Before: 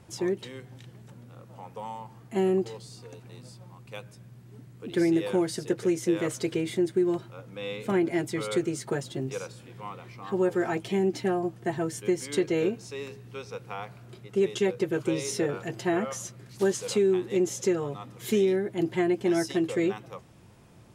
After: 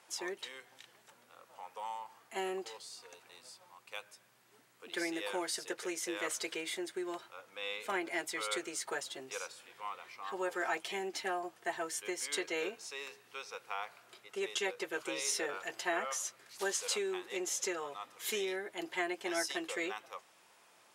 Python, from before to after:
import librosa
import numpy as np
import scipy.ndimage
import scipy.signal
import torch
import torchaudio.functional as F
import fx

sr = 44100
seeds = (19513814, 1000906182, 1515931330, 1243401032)

y = scipy.signal.sosfilt(scipy.signal.butter(2, 850.0, 'highpass', fs=sr, output='sos'), x)